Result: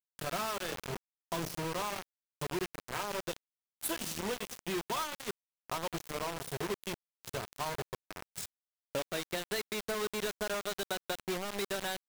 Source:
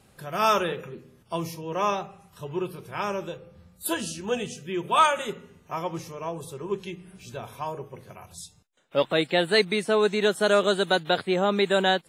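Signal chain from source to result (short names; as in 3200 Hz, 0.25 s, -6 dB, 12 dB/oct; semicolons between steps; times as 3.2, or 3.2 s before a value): 0.73–1.68 low shelf 93 Hz +10 dB; compressor 10:1, threshold -34 dBFS, peak gain reduction 20 dB; bit-crush 6-bit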